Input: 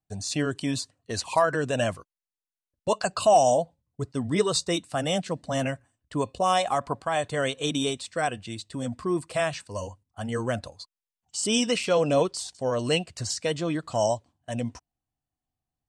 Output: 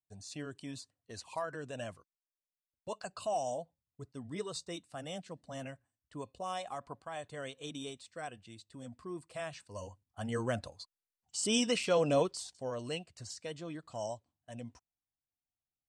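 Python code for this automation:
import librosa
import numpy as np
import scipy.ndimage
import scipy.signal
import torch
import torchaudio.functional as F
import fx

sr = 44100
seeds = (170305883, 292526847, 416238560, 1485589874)

y = fx.gain(x, sr, db=fx.line((9.29, -16.0), (10.23, -6.0), (12.15, -6.0), (13.0, -15.0)))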